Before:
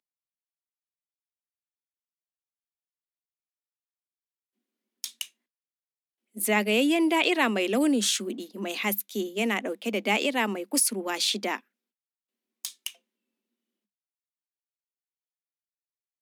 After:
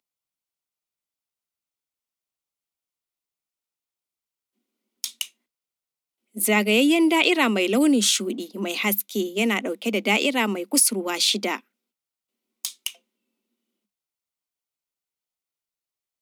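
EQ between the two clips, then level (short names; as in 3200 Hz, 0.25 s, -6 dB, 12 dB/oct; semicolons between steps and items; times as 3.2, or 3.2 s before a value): notch 1700 Hz, Q 5.9; dynamic EQ 740 Hz, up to -4 dB, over -38 dBFS, Q 1.3; +5.5 dB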